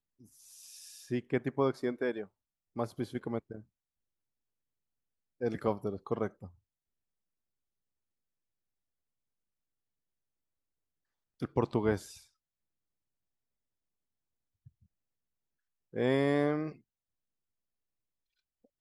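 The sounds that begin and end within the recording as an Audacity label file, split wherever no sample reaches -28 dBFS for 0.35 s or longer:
1.120000	2.200000	sound
2.790000	3.390000	sound
5.430000	6.270000	sound
11.430000	11.960000	sound
15.970000	16.630000	sound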